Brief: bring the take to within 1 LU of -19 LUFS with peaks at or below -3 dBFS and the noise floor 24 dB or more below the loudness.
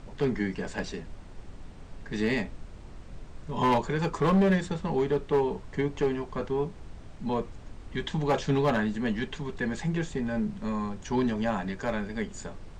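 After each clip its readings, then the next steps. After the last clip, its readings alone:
clipped 0.7%; flat tops at -18.5 dBFS; noise floor -46 dBFS; noise floor target -54 dBFS; loudness -29.5 LUFS; peak -18.5 dBFS; loudness target -19.0 LUFS
-> clip repair -18.5 dBFS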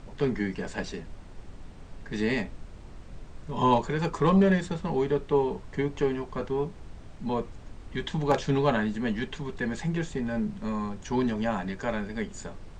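clipped 0.0%; noise floor -46 dBFS; noise floor target -53 dBFS
-> noise print and reduce 7 dB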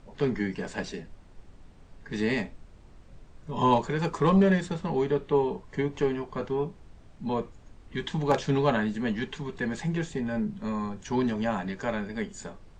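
noise floor -52 dBFS; noise floor target -53 dBFS
-> noise print and reduce 6 dB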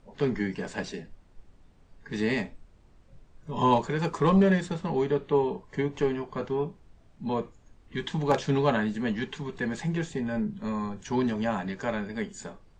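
noise floor -58 dBFS; loudness -29.0 LUFS; peak -10.0 dBFS; loudness target -19.0 LUFS
-> gain +10 dB; limiter -3 dBFS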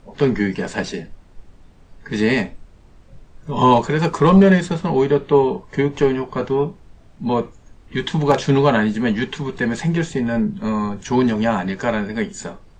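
loudness -19.0 LUFS; peak -3.0 dBFS; noise floor -48 dBFS

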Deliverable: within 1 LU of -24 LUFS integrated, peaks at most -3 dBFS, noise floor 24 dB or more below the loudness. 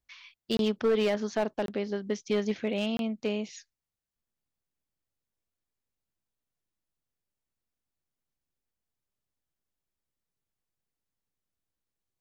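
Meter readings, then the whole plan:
clipped 0.3%; flat tops at -20.0 dBFS; dropouts 3; longest dropout 22 ms; loudness -30.0 LUFS; peak -20.0 dBFS; loudness target -24.0 LUFS
-> clip repair -20 dBFS; interpolate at 0.57/1.66/2.97, 22 ms; gain +6 dB

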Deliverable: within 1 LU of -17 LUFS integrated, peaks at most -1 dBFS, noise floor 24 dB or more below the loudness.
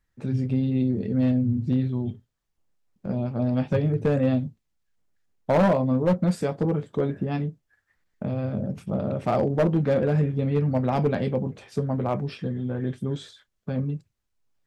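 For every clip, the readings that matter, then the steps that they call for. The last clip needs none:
clipped 0.9%; flat tops at -15.0 dBFS; loudness -25.5 LUFS; peak -15.0 dBFS; loudness target -17.0 LUFS
-> clip repair -15 dBFS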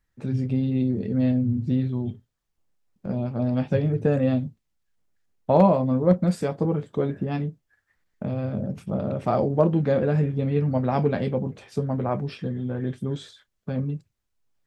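clipped 0.0%; loudness -25.0 LUFS; peak -6.0 dBFS; loudness target -17.0 LUFS
-> gain +8 dB; limiter -1 dBFS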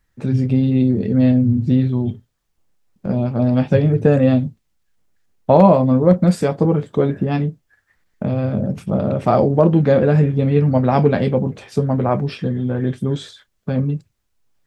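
loudness -17.0 LUFS; peak -1.0 dBFS; noise floor -69 dBFS

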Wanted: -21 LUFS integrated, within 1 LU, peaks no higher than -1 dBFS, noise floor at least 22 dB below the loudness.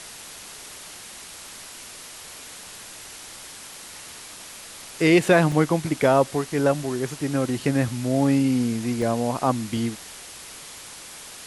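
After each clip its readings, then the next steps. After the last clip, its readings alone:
dropouts 3; longest dropout 1.6 ms; noise floor -41 dBFS; noise floor target -44 dBFS; loudness -22.0 LUFS; peak -4.5 dBFS; loudness target -21.0 LUFS
-> interpolate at 5.52/9.02/9.77, 1.6 ms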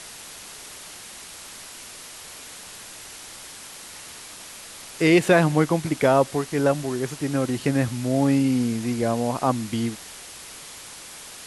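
dropouts 0; noise floor -41 dBFS; noise floor target -44 dBFS
-> denoiser 6 dB, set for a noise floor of -41 dBFS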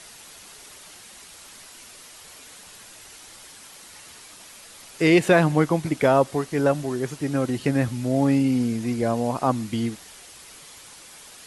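noise floor -46 dBFS; loudness -22.5 LUFS; peak -4.5 dBFS; loudness target -21.0 LUFS
-> gain +1.5 dB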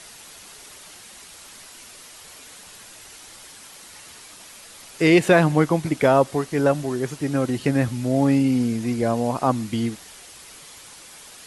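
loudness -21.0 LUFS; peak -3.0 dBFS; noise floor -44 dBFS

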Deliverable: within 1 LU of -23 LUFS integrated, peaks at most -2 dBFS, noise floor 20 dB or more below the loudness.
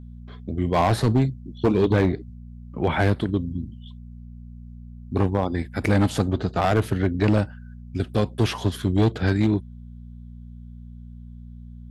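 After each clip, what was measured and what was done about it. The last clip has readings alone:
clipped 1.6%; flat tops at -13.0 dBFS; hum 60 Hz; harmonics up to 240 Hz; hum level -38 dBFS; loudness -23.5 LUFS; peak -13.0 dBFS; loudness target -23.0 LUFS
-> clip repair -13 dBFS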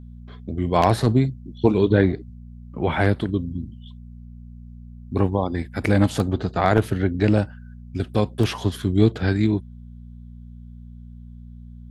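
clipped 0.0%; hum 60 Hz; harmonics up to 240 Hz; hum level -37 dBFS
-> de-hum 60 Hz, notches 4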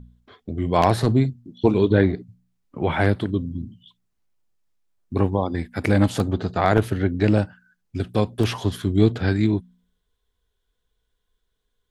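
hum none; loudness -22.0 LUFS; peak -3.5 dBFS; loudness target -23.0 LUFS
-> gain -1 dB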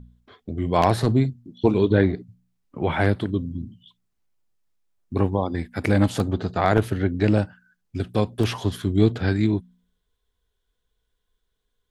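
loudness -23.0 LUFS; peak -4.5 dBFS; noise floor -76 dBFS

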